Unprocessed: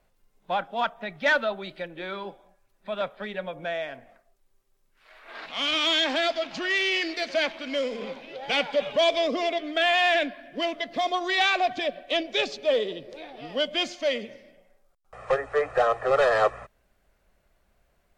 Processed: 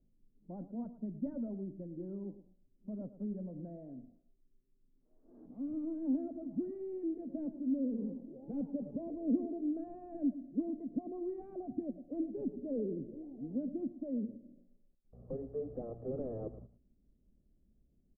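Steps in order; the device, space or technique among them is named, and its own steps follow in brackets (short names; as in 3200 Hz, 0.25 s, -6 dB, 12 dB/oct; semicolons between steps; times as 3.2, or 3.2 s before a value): 12.45–13.24 tilt shelf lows +3.5 dB, about 720 Hz; overdriven synthesiser ladder filter (soft clip -19 dBFS, distortion -15 dB; ladder low-pass 310 Hz, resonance 50%); outdoor echo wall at 19 m, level -14 dB; gain +6.5 dB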